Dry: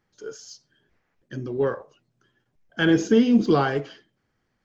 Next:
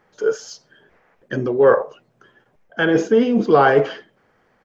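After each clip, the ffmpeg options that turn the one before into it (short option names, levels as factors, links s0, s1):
-af "areverse,acompressor=threshold=0.0501:ratio=8,areverse,firequalizer=gain_entry='entry(100,0);entry(190,6);entry(310,5);entry(460,14);entry(4300,1)':delay=0.05:min_phase=1,volume=1.78"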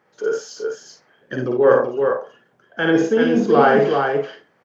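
-filter_complex "[0:a]highpass=120,asplit=2[s0][s1];[s1]aecho=0:1:55|88|383|426:0.708|0.251|0.596|0.282[s2];[s0][s2]amix=inputs=2:normalize=0,volume=0.75"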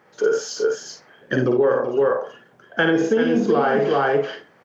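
-af "acompressor=threshold=0.0891:ratio=12,volume=2.11"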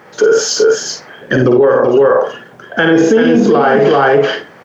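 -af "alimiter=level_in=6.68:limit=0.891:release=50:level=0:latency=1,volume=0.891"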